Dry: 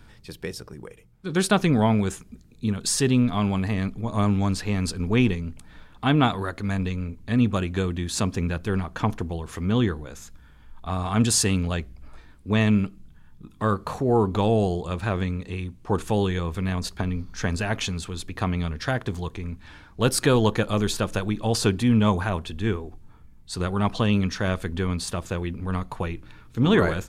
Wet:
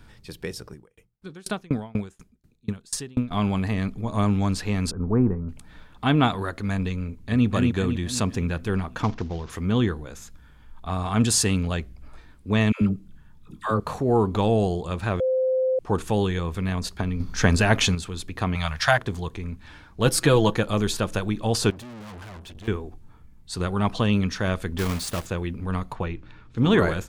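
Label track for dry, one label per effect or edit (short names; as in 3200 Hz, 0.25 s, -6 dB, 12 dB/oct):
0.730000	3.310000	dB-ramp tremolo decaying 4.1 Hz, depth 32 dB
4.910000	5.490000	steep low-pass 1400 Hz
7.060000	7.460000	echo throw 0.25 s, feedback 50%, level -2.5 dB
9.030000	9.500000	CVSD 32 kbps
12.720000	13.800000	dispersion lows, late by 96 ms, half as late at 640 Hz
15.200000	15.790000	bleep 518 Hz -19 dBFS
17.200000	17.950000	gain +7 dB
18.550000	18.980000	EQ curve 150 Hz 0 dB, 350 Hz -22 dB, 660 Hz +9 dB
20.050000	20.530000	comb 6.1 ms, depth 55%
21.700000	22.680000	tube stage drive 39 dB, bias 0.55
24.780000	25.280000	block floating point 3-bit
25.930000	26.580000	air absorption 91 m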